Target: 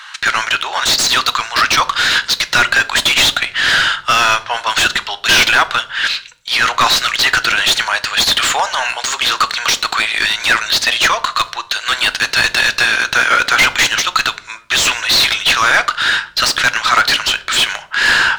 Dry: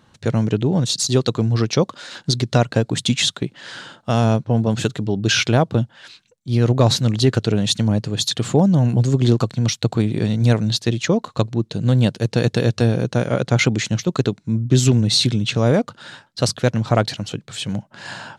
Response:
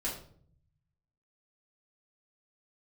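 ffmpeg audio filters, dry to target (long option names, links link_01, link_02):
-filter_complex "[0:a]highpass=frequency=1300:width=0.5412,highpass=frequency=1300:width=1.3066,asplit=2[link_01][link_02];[link_02]highpass=frequency=720:poles=1,volume=33dB,asoftclip=type=tanh:threshold=-4.5dB[link_03];[link_01][link_03]amix=inputs=2:normalize=0,lowpass=frequency=2200:poles=1,volume=-6dB,asplit=2[link_04][link_05];[1:a]atrim=start_sample=2205[link_06];[link_05][link_06]afir=irnorm=-1:irlink=0,volume=-14dB[link_07];[link_04][link_07]amix=inputs=2:normalize=0,volume=4dB"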